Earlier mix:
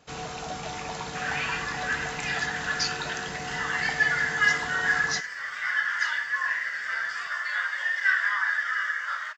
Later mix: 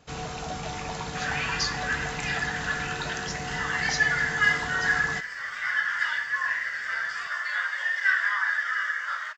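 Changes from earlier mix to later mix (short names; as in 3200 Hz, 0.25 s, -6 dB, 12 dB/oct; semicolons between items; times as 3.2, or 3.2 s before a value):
speech: entry -1.20 s; master: add low shelf 140 Hz +8.5 dB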